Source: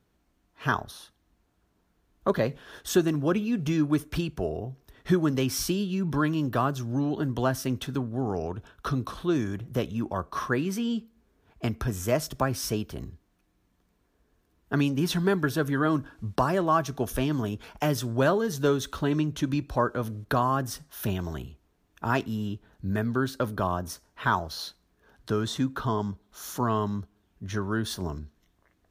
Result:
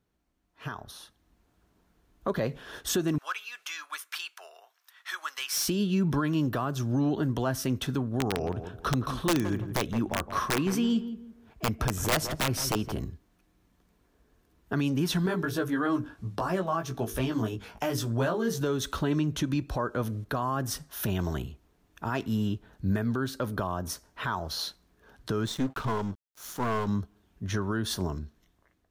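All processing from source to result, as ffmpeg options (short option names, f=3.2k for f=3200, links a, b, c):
-filter_complex "[0:a]asettb=1/sr,asplit=3[a][b][c];[a]atrim=end=3.184[d];[b]atrim=start=3.18:end=5.68,asetpts=PTS-STARTPTS,afade=t=in:d=0.004:c=qsin,afade=t=out:st=2.496:d=0.004:c=qsin,highpass=f=1.1k:w=0.5412,highpass=f=1.1k:w=1.3066,volume=27.5dB,asoftclip=hard,volume=-27.5dB[e];[c]atrim=start=5.676[f];[d][e]acrossfade=d=0.004:c1=hsin:c2=qsin[g];[g][f]acrossfade=d=0.004:c1=qsin:c2=hsin,asettb=1/sr,asplit=3[h][i][j];[h]atrim=end=8.204[k];[i]atrim=start=8.2:end=13.05,asetpts=PTS-STARTPTS,afade=t=in:d=0.004:c=qsin,afade=t=out:st=4.846:d=0.004:c=qsin,aeval=exprs='(mod(7.94*val(0)+1,2)-1)/7.94':c=same,asplit=2[l][m];[m]adelay=167,lowpass=f=1.3k:p=1,volume=-11dB,asplit=2[n][o];[o]adelay=167,lowpass=f=1.3k:p=1,volume=0.3,asplit=2[p][q];[q]adelay=167,lowpass=f=1.3k:p=1,volume=0.3[r];[l][n][p][r]amix=inputs=4:normalize=0,atrim=end_sample=213885[s];[j]atrim=start=13.046[t];[k][s]acrossfade=d=0.004:c1=hsin:c2=qsin[u];[u][t]acrossfade=d=0.004:c1=qsin:c2=hsin,asettb=1/sr,asplit=3[v][w][x];[v]atrim=end=15.264[y];[w]atrim=start=15.26:end=18.61,asetpts=PTS-STARTPTS,afade=t=in:d=0.004:c=qsin,afade=t=out:st=3.346:d=0.004:c=qsin,flanger=delay=16:depth=2.2:speed=3,bandreject=f=50:t=h:w=6,bandreject=f=100:t=h:w=6,bandreject=f=150:t=h:w=6,bandreject=f=200:t=h:w=6,bandreject=f=250:t=h:w=6,bandreject=f=300:t=h:w=6,bandreject=f=350:t=h:w=6,bandreject=f=400:t=h:w=6,bandreject=f=450:t=h:w=6[z];[x]atrim=start=18.606[aa];[y][z]acrossfade=d=0.004:c1=hsin:c2=qsin[ab];[ab][aa]acrossfade=d=0.004:c1=qsin:c2=hsin,asettb=1/sr,asplit=3[ac][ad][ae];[ac]atrim=end=25.464[af];[ad]atrim=start=25.46:end=26.88,asetpts=PTS-STARTPTS,afade=t=in:d=0.004:c=qsin,afade=t=out:st=1.416:d=0.004:c=qsin,aeval=exprs='sgn(val(0))*max(abs(val(0))-0.00596,0)':c=same,aeval=exprs='(tanh(17.8*val(0)+0.45)-tanh(0.45))/17.8':c=same[ag];[ae]atrim=start=26.876[ah];[af][ag]acrossfade=d=0.004:c1=hsin:c2=qsin[ai];[ai][ah]acrossfade=d=0.004:c1=qsin:c2=hsin,alimiter=limit=-21.5dB:level=0:latency=1:release=158,dynaudnorm=f=400:g=5:m=10dB,volume=-7dB"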